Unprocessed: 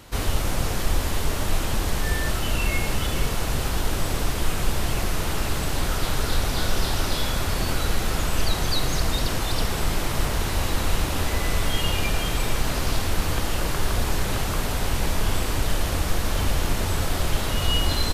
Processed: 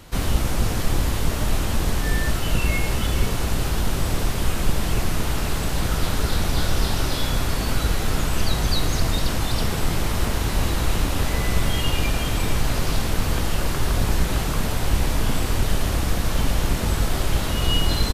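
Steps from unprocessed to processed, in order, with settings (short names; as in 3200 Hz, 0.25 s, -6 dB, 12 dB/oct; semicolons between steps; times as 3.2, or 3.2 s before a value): octaver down 1 oct, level +2 dB; doubler 18 ms -13.5 dB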